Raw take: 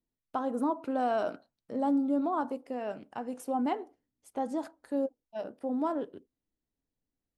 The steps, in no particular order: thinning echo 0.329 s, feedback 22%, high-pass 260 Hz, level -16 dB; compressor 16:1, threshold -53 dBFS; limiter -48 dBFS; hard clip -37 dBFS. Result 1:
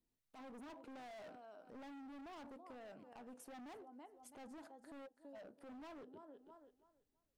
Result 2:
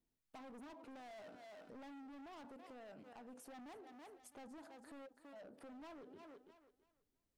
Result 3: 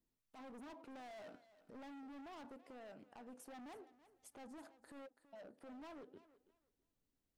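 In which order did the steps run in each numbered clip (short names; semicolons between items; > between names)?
thinning echo > hard clip > compressor > limiter; hard clip > thinning echo > limiter > compressor; hard clip > compressor > thinning echo > limiter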